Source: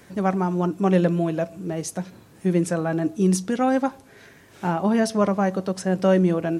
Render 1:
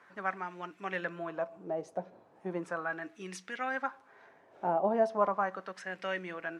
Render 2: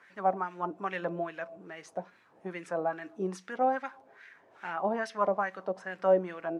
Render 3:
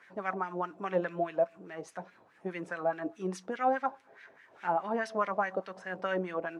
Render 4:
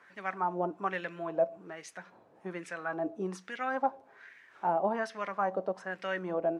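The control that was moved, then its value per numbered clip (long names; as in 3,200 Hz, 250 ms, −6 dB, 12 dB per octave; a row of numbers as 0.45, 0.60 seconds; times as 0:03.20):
LFO wah, speed: 0.37, 2.4, 4.8, 1.2 Hertz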